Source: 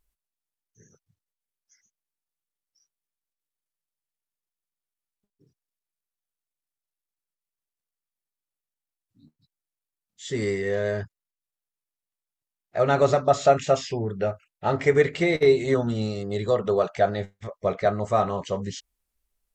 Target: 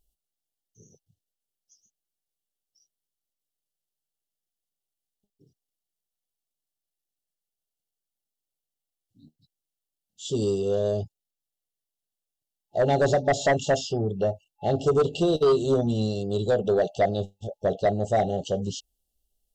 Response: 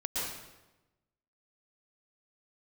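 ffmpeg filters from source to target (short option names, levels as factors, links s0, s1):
-af "afftfilt=real='re*(1-between(b*sr/4096,850,2700))':imag='im*(1-between(b*sr/4096,850,2700))':win_size=4096:overlap=0.75,aeval=exprs='0.473*sin(PI/2*2.24*val(0)/0.473)':c=same,volume=0.355"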